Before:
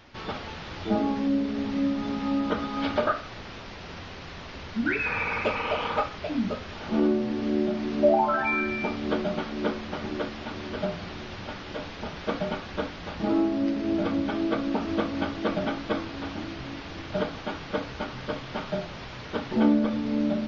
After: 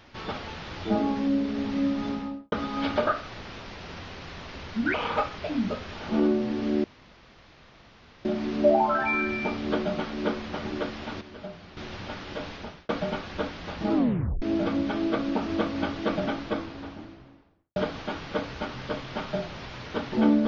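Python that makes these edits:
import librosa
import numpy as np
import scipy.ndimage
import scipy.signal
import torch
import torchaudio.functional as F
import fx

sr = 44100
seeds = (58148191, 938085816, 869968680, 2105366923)

y = fx.studio_fade_out(x, sr, start_s=2.05, length_s=0.47)
y = fx.studio_fade_out(y, sr, start_s=15.56, length_s=1.59)
y = fx.edit(y, sr, fx.cut(start_s=4.94, length_s=0.8),
    fx.insert_room_tone(at_s=7.64, length_s=1.41),
    fx.clip_gain(start_s=10.6, length_s=0.56, db=-10.0),
    fx.fade_out_span(start_s=11.92, length_s=0.36),
    fx.tape_stop(start_s=13.33, length_s=0.48), tone=tone)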